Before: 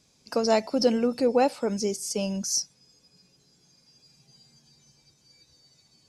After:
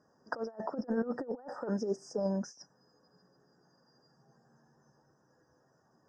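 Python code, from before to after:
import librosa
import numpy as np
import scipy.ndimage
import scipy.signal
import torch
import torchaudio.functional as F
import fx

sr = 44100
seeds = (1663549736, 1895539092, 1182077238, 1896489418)

y = fx.highpass(x, sr, hz=1200.0, slope=6)
y = fx.high_shelf(y, sr, hz=2800.0, db=-9.5)
y = fx.over_compress(y, sr, threshold_db=-39.0, ratio=-0.5)
y = fx.brickwall_bandstop(y, sr, low_hz=1900.0, high_hz=4800.0)
y = fx.spacing_loss(y, sr, db_at_10k=39)
y = y * 10.0 ** (8.0 / 20.0)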